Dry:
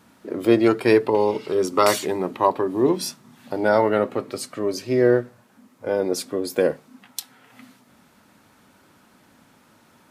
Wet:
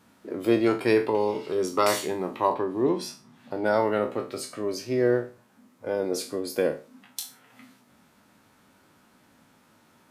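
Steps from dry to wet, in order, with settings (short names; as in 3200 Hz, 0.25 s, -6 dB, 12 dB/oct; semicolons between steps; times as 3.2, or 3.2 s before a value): spectral trails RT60 0.33 s; 2.53–3.64 high shelf 8400 Hz -> 5500 Hz -10 dB; gain -5.5 dB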